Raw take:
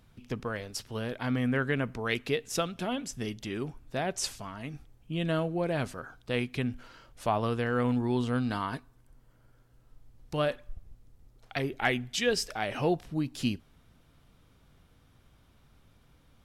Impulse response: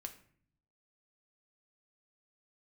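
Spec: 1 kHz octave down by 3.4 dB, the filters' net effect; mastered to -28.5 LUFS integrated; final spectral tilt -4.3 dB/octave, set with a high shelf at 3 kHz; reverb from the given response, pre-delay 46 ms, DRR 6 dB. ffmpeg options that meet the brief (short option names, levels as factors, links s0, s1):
-filter_complex "[0:a]equalizer=f=1000:t=o:g=-5.5,highshelf=f=3000:g=5,asplit=2[s0][s1];[1:a]atrim=start_sample=2205,adelay=46[s2];[s1][s2]afir=irnorm=-1:irlink=0,volume=0.794[s3];[s0][s3]amix=inputs=2:normalize=0,volume=1.33"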